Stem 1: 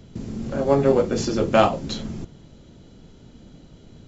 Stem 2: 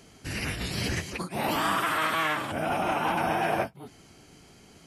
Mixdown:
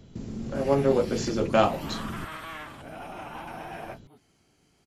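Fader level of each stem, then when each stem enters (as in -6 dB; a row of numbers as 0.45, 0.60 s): -4.5, -12.5 dB; 0.00, 0.30 s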